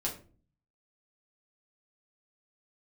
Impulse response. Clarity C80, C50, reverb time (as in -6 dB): 14.5 dB, 9.5 dB, 0.40 s